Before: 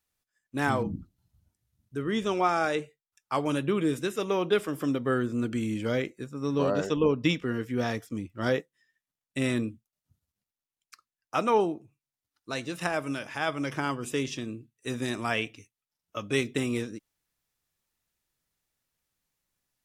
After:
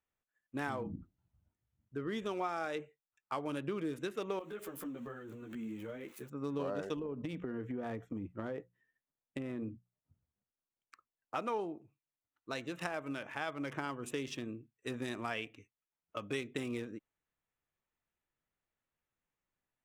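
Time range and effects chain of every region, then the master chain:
4.39–6.30 s: zero-crossing glitches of -30.5 dBFS + compression 12:1, threshold -31 dBFS + three-phase chorus
6.99–11.36 s: tilt shelf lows +5 dB, about 1.3 kHz + hum notches 60/120/180 Hz + compression 16:1, threshold -28 dBFS
whole clip: local Wiener filter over 9 samples; tone controls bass -4 dB, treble -1 dB; compression 3:1, threshold -32 dBFS; trim -3.5 dB

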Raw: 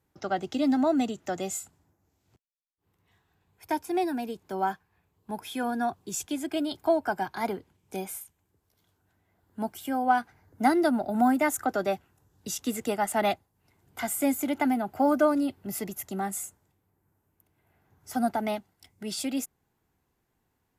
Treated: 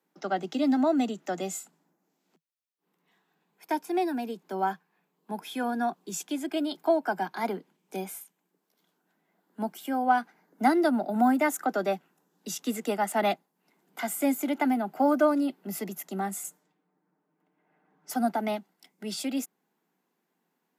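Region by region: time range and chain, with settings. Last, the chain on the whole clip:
16.44–18.14 s: level-controlled noise filter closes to 1.6 kHz, open at -44 dBFS + treble shelf 5.2 kHz +8.5 dB + comb 6.6 ms, depth 50%
whole clip: steep high-pass 160 Hz 96 dB/octave; peaking EQ 9.4 kHz -3.5 dB 1.1 oct

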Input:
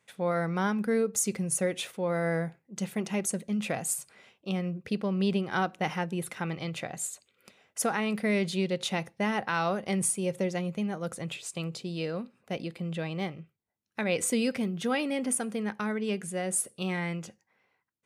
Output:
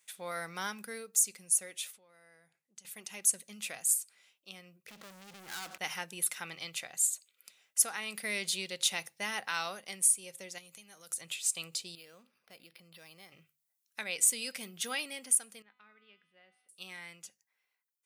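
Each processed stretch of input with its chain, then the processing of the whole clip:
1.93–2.85 s: low-pass 11 kHz + compression 3:1, threshold -46 dBFS
4.88–5.78 s: inverse Chebyshev low-pass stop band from 4.6 kHz + compression 5:1, threshold -37 dBFS + waveshaping leveller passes 5
10.58–11.21 s: treble shelf 3.4 kHz +9.5 dB + compression 10:1, threshold -36 dBFS
11.95–13.32 s: compression 2.5:1, threshold -46 dBFS + decimation joined by straight lines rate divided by 6×
15.62–16.69 s: inverse Chebyshev low-pass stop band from 6.7 kHz + feedback comb 250 Hz, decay 1.2 s, mix 80%
whole clip: pre-emphasis filter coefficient 0.97; hum notches 50/100/150 Hz; gain riding within 4 dB 0.5 s; trim +5 dB

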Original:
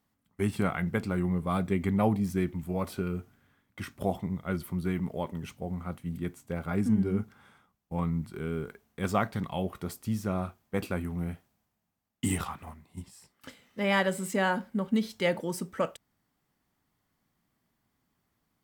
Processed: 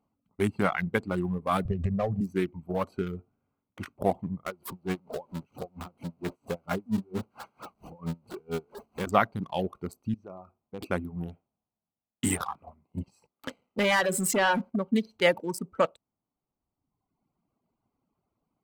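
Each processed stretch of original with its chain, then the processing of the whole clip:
1.65–2.21 s: compression 12:1, threshold -30 dBFS + tilt EQ -3 dB/octave + comb 1.7 ms, depth 81%
4.46–9.07 s: jump at every zero crossing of -33 dBFS + bass shelf 160 Hz -4.5 dB + logarithmic tremolo 4.4 Hz, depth 22 dB
10.14–10.81 s: compression 2:1, threshold -46 dBFS + distance through air 80 m
12.86–14.76 s: compression 4:1, threshold -28 dBFS + waveshaping leveller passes 2
whole clip: local Wiener filter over 25 samples; reverb removal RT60 1.3 s; bass shelf 270 Hz -9 dB; trim +7 dB

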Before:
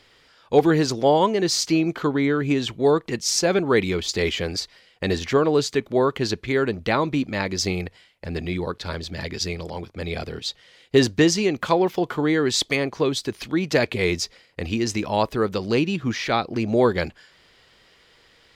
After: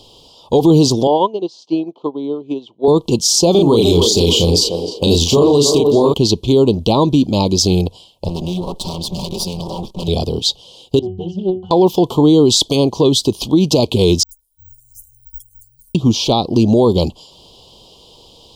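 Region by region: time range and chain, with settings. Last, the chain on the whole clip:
1.07–2.88 s: band-pass 300–2700 Hz + upward expansion 2.5:1, over -29 dBFS
3.51–6.14 s: treble shelf 4 kHz +7 dB + doubling 35 ms -3 dB + band-passed feedback delay 300 ms, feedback 46%, band-pass 560 Hz, level -6 dB
8.28–10.08 s: comb filter that takes the minimum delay 5.3 ms + compression 3:1, threshold -32 dBFS
10.99–11.71 s: pitch-class resonator F#, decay 0.28 s + loudspeaker Doppler distortion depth 0.29 ms
14.23–15.95 s: inverse Chebyshev band-stop 210–2900 Hz, stop band 80 dB + phase dispersion highs, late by 91 ms, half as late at 2.3 kHz + careless resampling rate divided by 2×, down none, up zero stuff
whole clip: Chebyshev band-stop 970–3100 Hz, order 3; dynamic bell 670 Hz, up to -4 dB, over -34 dBFS, Q 1.2; loudness maximiser +16.5 dB; trim -2.5 dB

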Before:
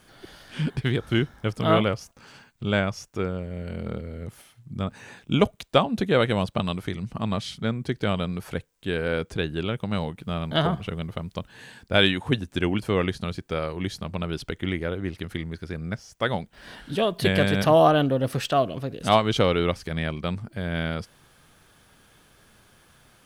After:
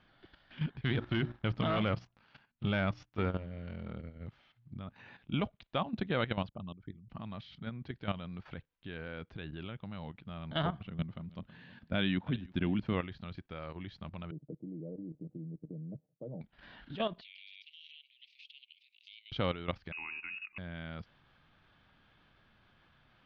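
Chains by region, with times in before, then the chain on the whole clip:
0.84–3.92 s: hum notches 60/120/180/240/300/360 Hz + waveshaping leveller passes 2
6.49–7.10 s: resonances exaggerated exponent 2 + peaking EQ 2.1 kHz -3.5 dB 0.29 oct + level held to a coarse grid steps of 14 dB
10.85–12.93 s: peaking EQ 200 Hz +9 dB 1.3 oct + band-stop 830 Hz, Q 22 + feedback delay 323 ms, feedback 30%, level -21.5 dB
14.31–16.41 s: elliptic band-pass 140–550 Hz, stop band 50 dB + comb 6.5 ms, depth 53%
17.21–19.32 s: steep high-pass 2.2 kHz 96 dB/octave + compression 10:1, threshold -39 dBFS
19.92–20.58 s: Butterworth band-stop 2.1 kHz, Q 6.2 + de-hum 147 Hz, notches 38 + frequency inversion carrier 2.7 kHz
whole clip: inverse Chebyshev low-pass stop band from 8.8 kHz, stop band 50 dB; peaking EQ 440 Hz -6.5 dB 0.63 oct; level held to a coarse grid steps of 12 dB; trim -6.5 dB

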